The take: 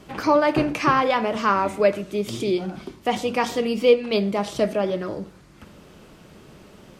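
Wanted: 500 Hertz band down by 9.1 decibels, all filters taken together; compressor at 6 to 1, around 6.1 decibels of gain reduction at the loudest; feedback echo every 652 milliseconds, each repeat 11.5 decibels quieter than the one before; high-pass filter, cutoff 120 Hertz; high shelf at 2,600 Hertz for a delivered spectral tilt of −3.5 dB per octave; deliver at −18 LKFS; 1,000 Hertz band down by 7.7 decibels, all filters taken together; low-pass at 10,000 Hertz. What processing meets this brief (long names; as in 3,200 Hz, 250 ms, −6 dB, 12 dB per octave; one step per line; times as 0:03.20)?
high-pass filter 120 Hz
low-pass filter 10,000 Hz
parametric band 500 Hz −9 dB
parametric band 1,000 Hz −8.5 dB
high-shelf EQ 2,600 Hz +8 dB
downward compressor 6 to 1, threshold −25 dBFS
repeating echo 652 ms, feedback 27%, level −11.5 dB
level +11.5 dB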